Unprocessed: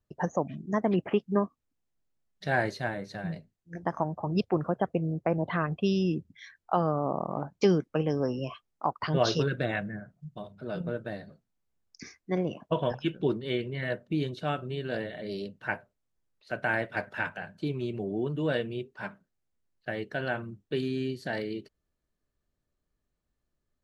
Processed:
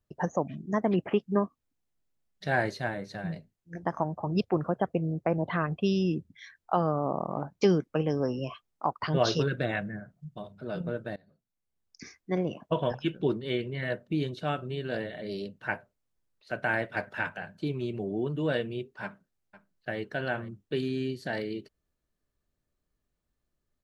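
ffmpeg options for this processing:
-filter_complex "[0:a]asplit=2[a][b];[b]afade=t=in:st=19.03:d=0.01,afade=t=out:st=19.98:d=0.01,aecho=0:1:500|1000:0.141254|0.0141254[c];[a][c]amix=inputs=2:normalize=0,asplit=2[d][e];[d]atrim=end=11.16,asetpts=PTS-STARTPTS,afade=t=out:st=11.156:d=0.004:c=hsin:silence=0.0794328[f];[e]atrim=start=11.16,asetpts=PTS-STARTPTS,afade=t=in:d=0.99:silence=0.0794328[g];[f][g]concat=n=2:v=0:a=1"

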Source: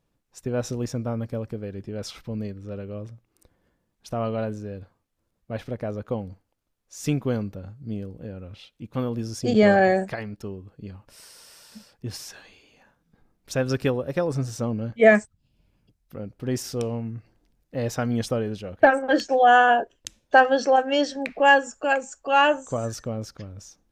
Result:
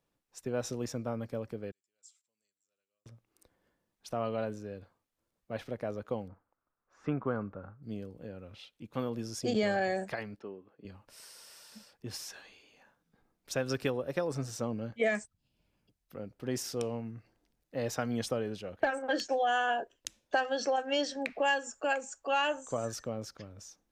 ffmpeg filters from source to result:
-filter_complex "[0:a]asettb=1/sr,asplit=3[a][b][c];[a]atrim=end=1.714[d];[b]atrim=start=1.71:end=3.06,asetpts=PTS-STARTPTS,afade=t=in:d=0.004:c=qsin,afade=t=out:st=1.346:d=0.004:c=qsin,bandpass=f=7.5k:t=q:w=15[e];[c]atrim=start=3.056[f];[d][e]acrossfade=d=0.004:c1=hsin:c2=qsin[g];[g][f]acrossfade=d=0.004:c1=qsin:c2=hsin,asettb=1/sr,asplit=3[h][i][j];[h]atrim=end=6.284[k];[i]atrim=start=6.28:end=7.83,asetpts=PTS-STARTPTS,afade=t=in:d=0.004:c=qsin,afade=t=out:st=1.546:d=0.004:c=qsin,lowpass=f=1.3k:t=q:w=3.1[l];[j]atrim=start=7.826[m];[k][l]acrossfade=d=0.004:c1=hsin:c2=qsin[n];[n][m]acrossfade=d=0.004:c1=qsin:c2=hsin,asettb=1/sr,asplit=3[o][p][q];[o]atrim=end=10.394[r];[p]atrim=start=10.39:end=10.85,asetpts=PTS-STARTPTS,afade=t=in:d=0.004:c=qsin,afade=t=out:st=0.456:d=0.004:c=qsin,highpass=250,lowpass=2.5k[s];[q]atrim=start=10.846[t];[r][s]acrossfade=d=0.004:c1=hsin:c2=qsin[u];[u][t]acrossfade=d=0.004:c1=qsin:c2=hsin,lowshelf=f=200:g=-9.5,acrossover=split=130|3000[v][w][x];[w]acompressor=threshold=-23dB:ratio=6[y];[v][y][x]amix=inputs=3:normalize=0,volume=-4dB"

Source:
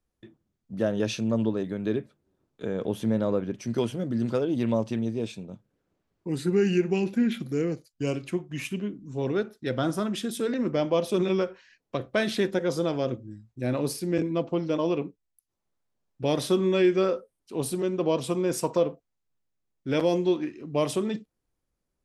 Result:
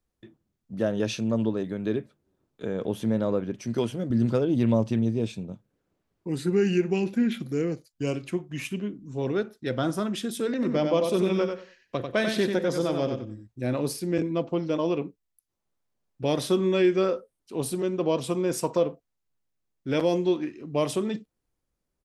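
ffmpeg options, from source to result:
-filter_complex "[0:a]asettb=1/sr,asplit=3[a][b][c];[a]atrim=end=4.104[d];[b]atrim=start=4.1:end=5.53,asetpts=PTS-STARTPTS,afade=t=in:d=0.004:c=qsin,afade=t=out:st=1.426:d=0.004:c=qsin,lowshelf=f=200:g=8.5[e];[c]atrim=start=5.526[f];[d][e]acrossfade=d=0.004:c1=hsin:c2=qsin[g];[g][f]acrossfade=d=0.004:c1=qsin:c2=hsin,asplit=3[h][i][j];[h]afade=t=out:st=10.61:d=0.02[k];[i]aecho=1:1:93|186|279:0.531|0.122|0.0281,afade=t=in:st=10.61:d=0.02,afade=t=out:st=13.46:d=0.02[l];[j]afade=t=in:st=13.46:d=0.02[m];[k][l][m]amix=inputs=3:normalize=0"

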